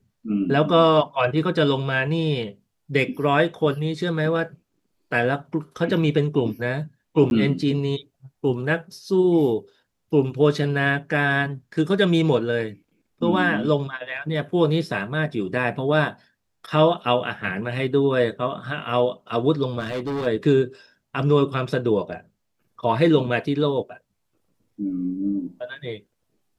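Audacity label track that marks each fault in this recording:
7.300000	7.310000	drop-out 11 ms
19.790000	20.270000	clipping −23.5 dBFS

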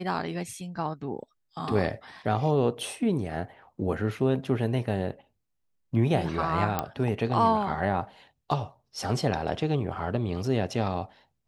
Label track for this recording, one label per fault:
6.790000	6.790000	click −12 dBFS

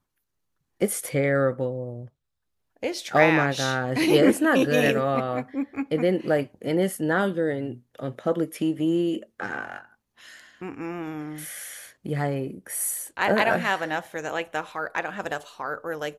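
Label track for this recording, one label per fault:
5.760000	5.760000	drop-out 2.4 ms

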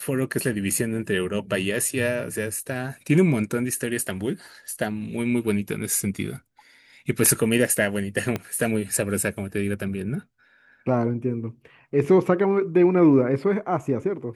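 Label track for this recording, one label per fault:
8.360000	8.360000	click −13 dBFS

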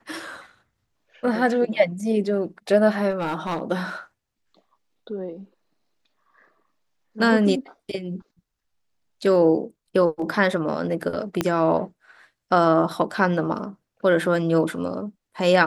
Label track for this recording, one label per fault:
3.100000	3.620000	clipping −21.5 dBFS
11.410000	11.410000	click −7 dBFS

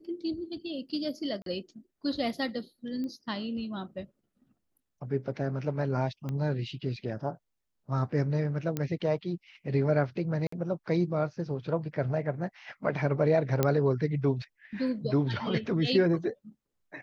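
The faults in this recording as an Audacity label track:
1.420000	1.460000	drop-out 42 ms
3.040000	3.040000	click −27 dBFS
6.290000	6.290000	click −23 dBFS
8.770000	8.770000	click −17 dBFS
10.470000	10.520000	drop-out 54 ms
13.630000	13.630000	click −11 dBFS

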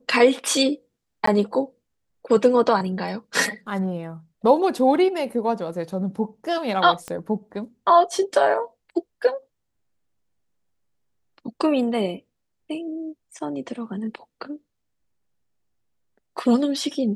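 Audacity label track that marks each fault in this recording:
1.260000	1.270000	drop-out 14 ms
7.080000	7.080000	click −18 dBFS

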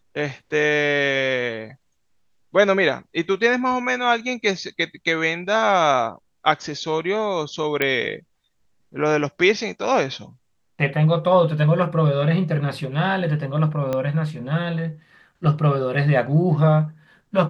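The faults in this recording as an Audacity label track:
7.820000	7.820000	click −7 dBFS
13.930000	13.930000	click −12 dBFS

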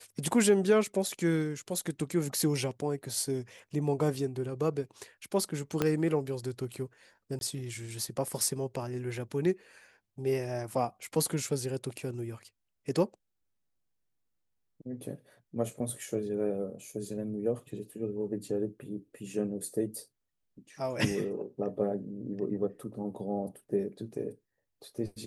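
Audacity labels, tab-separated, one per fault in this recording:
5.820000	5.820000	click −13 dBFS
7.390000	7.410000	drop-out 21 ms

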